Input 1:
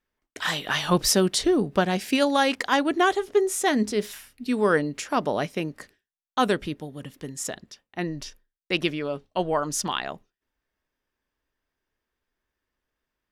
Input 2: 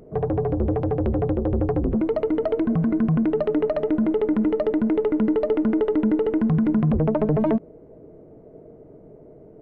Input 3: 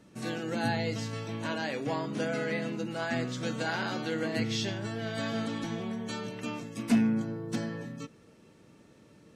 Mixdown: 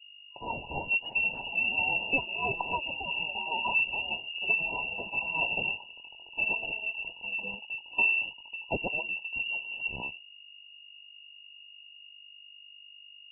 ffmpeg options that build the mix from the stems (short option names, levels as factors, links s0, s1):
-filter_complex "[0:a]asoftclip=type=tanh:threshold=0.251,aeval=exprs='val(0)+0.00398*(sin(2*PI*50*n/s)+sin(2*PI*2*50*n/s)/2+sin(2*PI*3*50*n/s)/3+sin(2*PI*4*50*n/s)/4+sin(2*PI*5*50*n/s)/5)':c=same,volume=0.75,asplit=2[s0][s1];[1:a]acompressor=threshold=0.0891:ratio=6,flanger=delay=20:depth=2.7:speed=0.7,adelay=2500,volume=0.355[s2];[2:a]adelay=1000,volume=1.06[s3];[s1]apad=whole_len=456447[s4];[s3][s4]sidechaingate=range=0.0447:threshold=0.0112:ratio=16:detection=peak[s5];[s0][s2][s5]amix=inputs=3:normalize=0,afftfilt=real='re*(1-between(b*sr/4096,270,1900))':imag='im*(1-between(b*sr/4096,270,1900))':win_size=4096:overlap=0.75,highshelf=f=2000:g=7.5,lowpass=f=2500:t=q:w=0.5098,lowpass=f=2500:t=q:w=0.6013,lowpass=f=2500:t=q:w=0.9,lowpass=f=2500:t=q:w=2.563,afreqshift=-2900"